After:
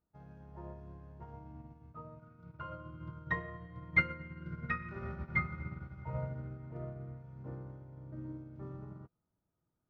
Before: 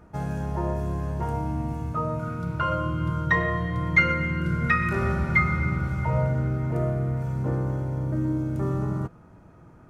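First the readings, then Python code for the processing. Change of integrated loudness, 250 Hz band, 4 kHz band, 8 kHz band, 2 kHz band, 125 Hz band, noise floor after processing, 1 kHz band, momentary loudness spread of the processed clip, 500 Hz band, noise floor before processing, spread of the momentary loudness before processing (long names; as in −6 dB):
−14.0 dB, −18.0 dB, below −15 dB, can't be measured, −11.5 dB, −18.0 dB, −85 dBFS, −16.5 dB, 18 LU, −18.0 dB, −51 dBFS, 8 LU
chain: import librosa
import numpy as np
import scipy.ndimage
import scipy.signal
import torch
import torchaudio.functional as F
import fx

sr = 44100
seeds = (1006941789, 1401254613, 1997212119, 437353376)

y = scipy.signal.sosfilt(scipy.signal.butter(4, 5100.0, 'lowpass', fs=sr, output='sos'), x)
y = fx.high_shelf(y, sr, hz=2500.0, db=-5.5)
y = fx.upward_expand(y, sr, threshold_db=-36.0, expansion=2.5)
y = y * 10.0 ** (-5.0 / 20.0)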